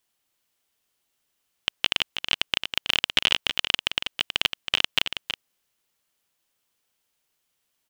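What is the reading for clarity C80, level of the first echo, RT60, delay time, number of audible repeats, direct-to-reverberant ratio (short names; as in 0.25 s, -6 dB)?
none, -8.5 dB, none, 0.323 s, 1, none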